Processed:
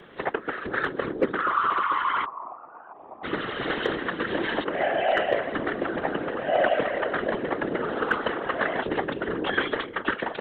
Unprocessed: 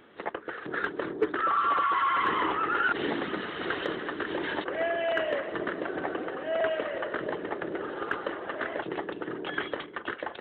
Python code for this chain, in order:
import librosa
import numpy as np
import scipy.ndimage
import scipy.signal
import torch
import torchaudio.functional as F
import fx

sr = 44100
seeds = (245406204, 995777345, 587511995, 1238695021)

y = fx.rider(x, sr, range_db=4, speed_s=2.0)
y = fx.formant_cascade(y, sr, vowel='a', at=(2.24, 3.23), fade=0.02)
y = fx.whisperise(y, sr, seeds[0])
y = y * librosa.db_to_amplitude(3.5)